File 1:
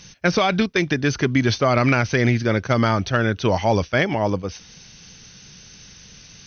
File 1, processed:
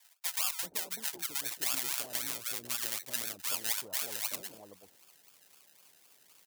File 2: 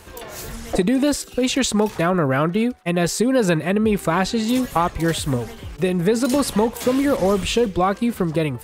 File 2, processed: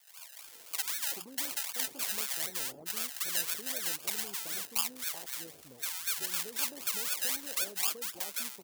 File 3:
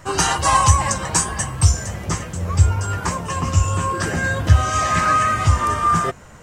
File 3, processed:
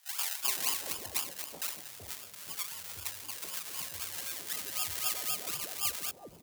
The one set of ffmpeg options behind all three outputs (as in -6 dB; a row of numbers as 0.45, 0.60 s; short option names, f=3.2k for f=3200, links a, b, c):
-filter_complex "[0:a]acrusher=samples=31:mix=1:aa=0.000001:lfo=1:lforange=18.6:lforate=3.9,aderivative,acrossover=split=700[a][b];[a]adelay=380[c];[c][b]amix=inputs=2:normalize=0,volume=-4dB"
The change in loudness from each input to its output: -13.5, -13.0, -15.5 LU